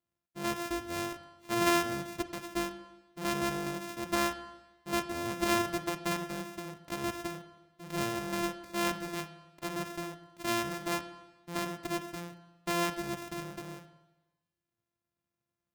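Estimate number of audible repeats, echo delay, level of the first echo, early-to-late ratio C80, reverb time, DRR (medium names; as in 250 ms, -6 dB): no echo, no echo, no echo, 14.0 dB, 1.1 s, 9.5 dB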